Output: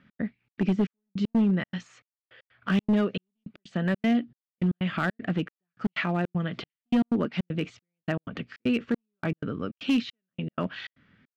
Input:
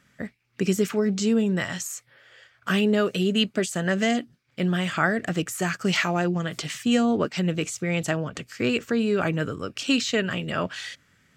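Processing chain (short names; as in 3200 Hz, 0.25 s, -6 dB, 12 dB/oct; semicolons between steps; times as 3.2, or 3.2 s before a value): LPF 3600 Hz 24 dB/oct; bell 220 Hz +9 dB 0.86 oct; in parallel at +1 dB: compressor 12:1, threshold -27 dBFS, peak gain reduction 17 dB; on the sum: overloaded stage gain 10 dB; step gate "x.xxx.xxx..." 156 bpm -60 dB; gain -8 dB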